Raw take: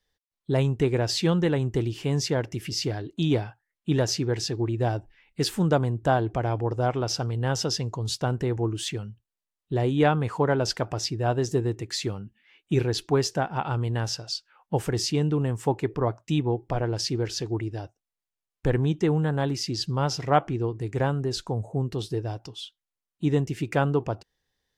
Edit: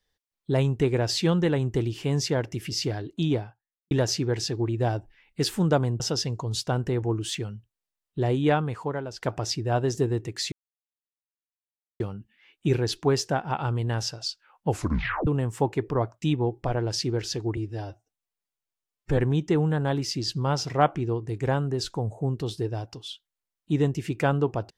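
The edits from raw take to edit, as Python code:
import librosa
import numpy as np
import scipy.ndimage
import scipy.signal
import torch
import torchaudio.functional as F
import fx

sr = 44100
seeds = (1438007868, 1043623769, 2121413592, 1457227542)

y = fx.studio_fade_out(x, sr, start_s=3.1, length_s=0.81)
y = fx.edit(y, sr, fx.cut(start_s=6.0, length_s=1.54),
    fx.fade_out_to(start_s=9.89, length_s=0.87, floor_db=-16.5),
    fx.insert_silence(at_s=12.06, length_s=1.48),
    fx.tape_stop(start_s=14.75, length_s=0.58),
    fx.stretch_span(start_s=17.63, length_s=1.07, factor=1.5), tone=tone)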